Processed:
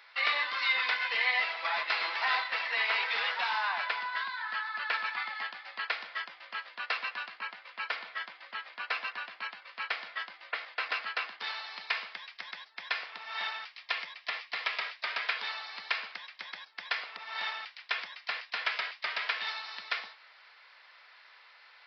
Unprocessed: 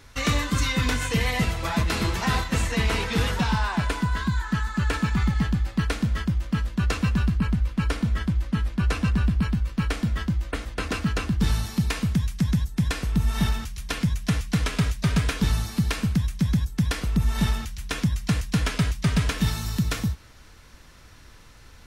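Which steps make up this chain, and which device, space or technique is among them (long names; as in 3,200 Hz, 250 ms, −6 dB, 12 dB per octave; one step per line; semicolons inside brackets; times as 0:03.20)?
0:13.74–0:14.85: notch filter 1,500 Hz, Q 11
musical greeting card (downsampling to 11,025 Hz; high-pass filter 680 Hz 24 dB per octave; parametric band 2,100 Hz +6 dB 0.56 octaves)
level −3 dB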